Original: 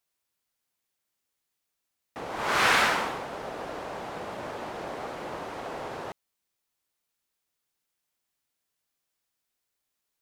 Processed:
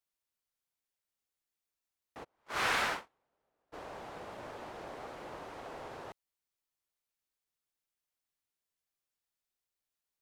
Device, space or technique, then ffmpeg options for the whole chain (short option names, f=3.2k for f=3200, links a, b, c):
low shelf boost with a cut just above: -filter_complex "[0:a]lowshelf=f=65:g=6,equalizer=f=190:t=o:w=0.77:g=-2.5,asplit=3[a][b][c];[a]afade=t=out:st=2.23:d=0.02[d];[b]agate=range=-37dB:threshold=-25dB:ratio=16:detection=peak,afade=t=in:st=2.23:d=0.02,afade=t=out:st=3.72:d=0.02[e];[c]afade=t=in:st=3.72:d=0.02[f];[d][e][f]amix=inputs=3:normalize=0,volume=-9dB"